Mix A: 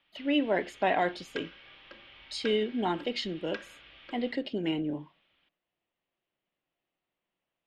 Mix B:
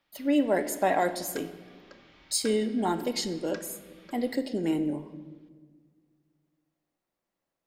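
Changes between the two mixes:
speech: send on
master: remove low-pass with resonance 3,000 Hz, resonance Q 3.2

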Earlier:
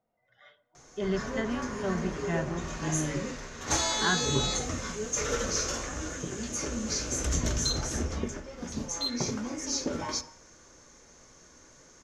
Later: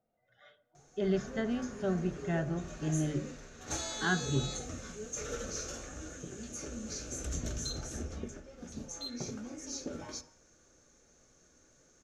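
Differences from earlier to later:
background −8.0 dB
master: add thirty-one-band graphic EQ 1,000 Hz −11 dB, 2,000 Hz −6 dB, 3,150 Hz −3 dB, 5,000 Hz −5 dB

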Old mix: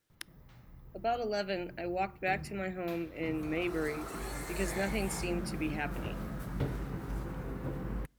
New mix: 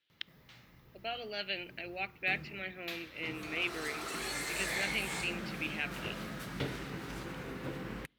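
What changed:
speech: add transistor ladder low-pass 4,000 Hz, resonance 45%
master: add meter weighting curve D

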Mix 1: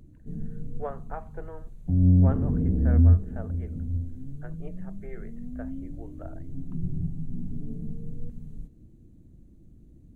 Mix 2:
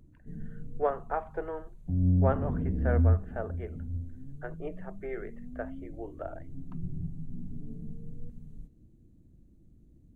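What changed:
speech +6.5 dB
background −6.0 dB

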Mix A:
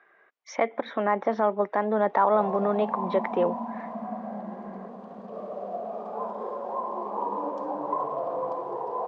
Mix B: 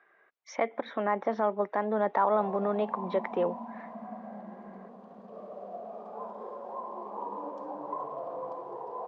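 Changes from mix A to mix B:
speech −4.0 dB
background −7.5 dB

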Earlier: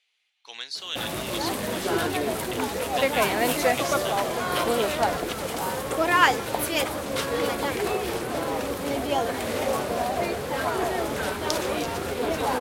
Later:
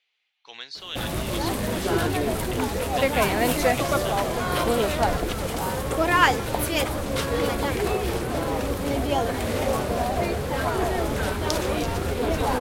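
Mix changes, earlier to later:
speech: add high-frequency loss of the air 110 metres
master: remove high-pass filter 270 Hz 6 dB per octave

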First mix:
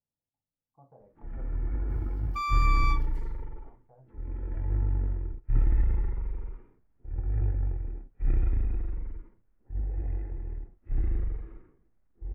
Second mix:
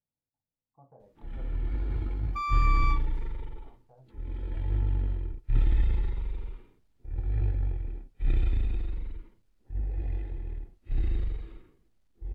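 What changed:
first sound: remove low-pass filter 1,900 Hz 24 dB per octave
second sound: add high-shelf EQ 4,500 Hz −8.5 dB

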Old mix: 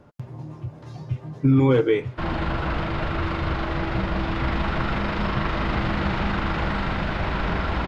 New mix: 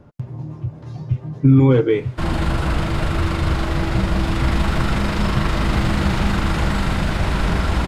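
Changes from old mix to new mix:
background: remove high-frequency loss of the air 230 metres
master: add low-shelf EQ 300 Hz +8 dB

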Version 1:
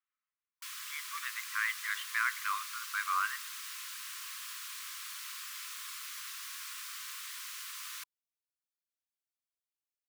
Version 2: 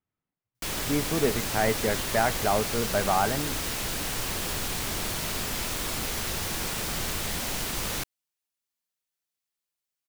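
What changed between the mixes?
background +11.0 dB
master: remove linear-phase brick-wall high-pass 1,000 Hz

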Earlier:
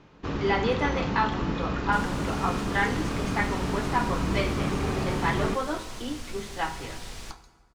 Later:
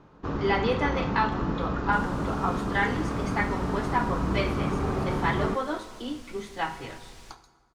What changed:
first sound: add high shelf with overshoot 1,700 Hz −6.5 dB, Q 1.5
second sound −8.5 dB

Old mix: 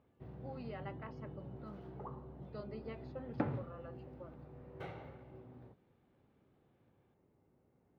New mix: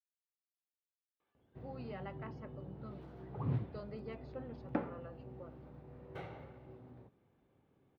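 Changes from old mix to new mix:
speech: entry +1.20 s
first sound: entry +1.35 s
second sound +6.5 dB

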